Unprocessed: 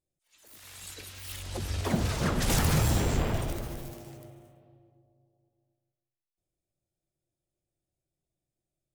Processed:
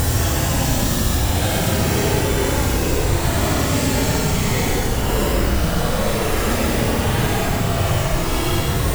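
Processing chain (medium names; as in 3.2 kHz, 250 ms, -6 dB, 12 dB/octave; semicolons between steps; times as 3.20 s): companded quantiser 2-bit; Paulstretch 17×, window 0.05 s, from 2.89 s; trim +7.5 dB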